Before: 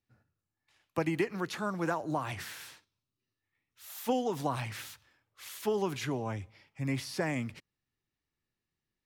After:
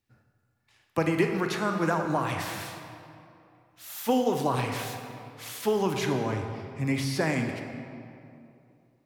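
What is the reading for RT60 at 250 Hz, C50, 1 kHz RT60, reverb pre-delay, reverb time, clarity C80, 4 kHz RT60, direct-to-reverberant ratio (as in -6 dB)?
2.8 s, 5.0 dB, 2.6 s, 25 ms, 2.6 s, 6.0 dB, 1.5 s, 4.0 dB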